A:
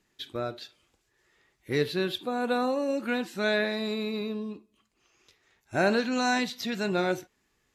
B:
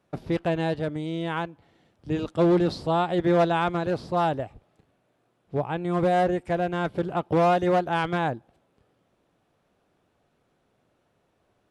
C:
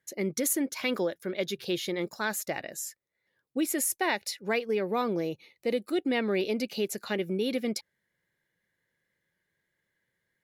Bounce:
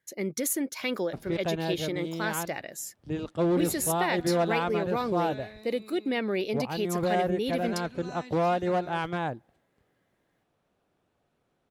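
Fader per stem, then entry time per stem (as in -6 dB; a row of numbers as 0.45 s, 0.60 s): -18.5 dB, -5.0 dB, -1.0 dB; 1.85 s, 1.00 s, 0.00 s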